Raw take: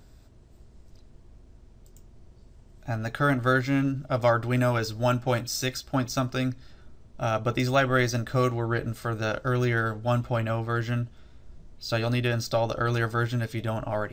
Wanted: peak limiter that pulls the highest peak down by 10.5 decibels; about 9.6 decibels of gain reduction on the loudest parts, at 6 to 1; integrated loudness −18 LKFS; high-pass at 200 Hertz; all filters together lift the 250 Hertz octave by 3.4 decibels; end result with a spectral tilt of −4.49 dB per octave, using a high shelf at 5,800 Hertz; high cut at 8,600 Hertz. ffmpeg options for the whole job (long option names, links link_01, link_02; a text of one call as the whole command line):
ffmpeg -i in.wav -af "highpass=200,lowpass=8600,equalizer=frequency=250:width_type=o:gain=5.5,highshelf=frequency=5800:gain=4.5,acompressor=threshold=-28dB:ratio=6,volume=19dB,alimiter=limit=-7.5dB:level=0:latency=1" out.wav